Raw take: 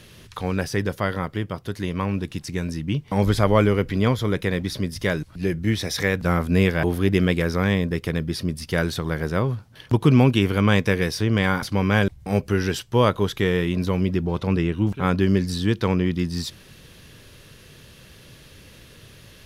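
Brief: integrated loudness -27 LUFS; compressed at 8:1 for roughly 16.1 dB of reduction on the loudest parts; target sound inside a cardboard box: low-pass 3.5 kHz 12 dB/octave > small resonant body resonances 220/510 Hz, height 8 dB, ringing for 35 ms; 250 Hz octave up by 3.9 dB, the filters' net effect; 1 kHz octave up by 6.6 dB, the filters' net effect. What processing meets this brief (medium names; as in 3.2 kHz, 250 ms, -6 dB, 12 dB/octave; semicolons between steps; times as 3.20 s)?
peaking EQ 250 Hz +5 dB; peaking EQ 1 kHz +8 dB; compression 8:1, threshold -25 dBFS; low-pass 3.5 kHz 12 dB/octave; small resonant body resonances 220/510 Hz, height 8 dB, ringing for 35 ms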